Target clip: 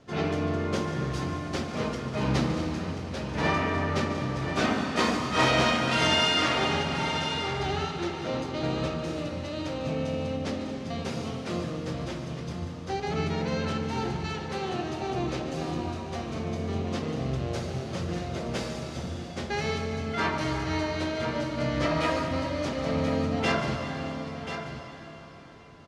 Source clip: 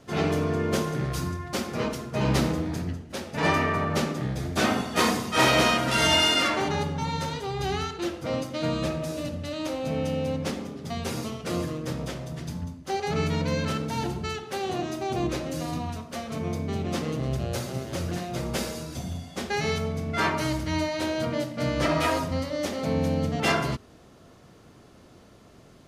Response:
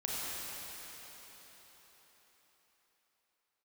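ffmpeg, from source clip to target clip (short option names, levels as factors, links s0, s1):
-filter_complex "[0:a]lowpass=6000,aecho=1:1:1035:0.335,asplit=2[s0][s1];[1:a]atrim=start_sample=2205,adelay=145[s2];[s1][s2]afir=irnorm=-1:irlink=0,volume=0.299[s3];[s0][s3]amix=inputs=2:normalize=0,volume=0.708"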